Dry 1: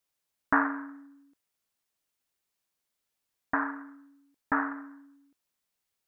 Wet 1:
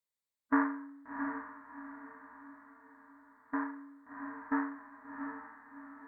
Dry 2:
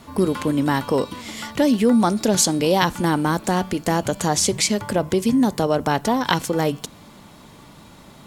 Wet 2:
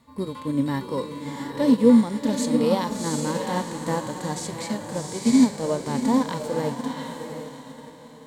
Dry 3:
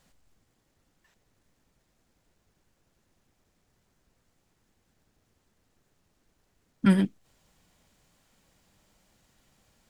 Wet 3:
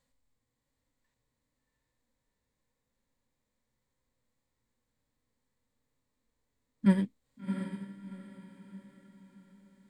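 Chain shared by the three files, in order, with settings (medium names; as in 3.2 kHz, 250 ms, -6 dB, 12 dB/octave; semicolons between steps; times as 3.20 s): rippled EQ curve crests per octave 1, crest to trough 6 dB; echo that smears into a reverb 719 ms, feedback 48%, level -5 dB; harmonic-percussive split percussive -13 dB; upward expansion 1.5:1, over -37 dBFS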